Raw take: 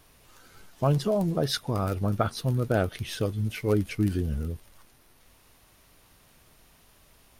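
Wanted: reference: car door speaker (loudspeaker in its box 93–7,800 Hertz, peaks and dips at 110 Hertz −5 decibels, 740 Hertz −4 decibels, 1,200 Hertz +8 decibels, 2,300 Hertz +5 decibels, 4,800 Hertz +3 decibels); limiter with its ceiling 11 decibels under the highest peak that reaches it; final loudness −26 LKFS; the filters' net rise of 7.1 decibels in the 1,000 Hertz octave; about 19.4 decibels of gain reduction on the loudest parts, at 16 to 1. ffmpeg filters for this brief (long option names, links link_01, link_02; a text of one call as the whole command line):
ffmpeg -i in.wav -af "equalizer=frequency=1000:width_type=o:gain=5,acompressor=threshold=-37dB:ratio=16,alimiter=level_in=13dB:limit=-24dB:level=0:latency=1,volume=-13dB,highpass=93,equalizer=frequency=110:width_type=q:width=4:gain=-5,equalizer=frequency=740:width_type=q:width=4:gain=-4,equalizer=frequency=1200:width_type=q:width=4:gain=8,equalizer=frequency=2300:width_type=q:width=4:gain=5,equalizer=frequency=4800:width_type=q:width=4:gain=3,lowpass=frequency=7800:width=0.5412,lowpass=frequency=7800:width=1.3066,volume=22.5dB" out.wav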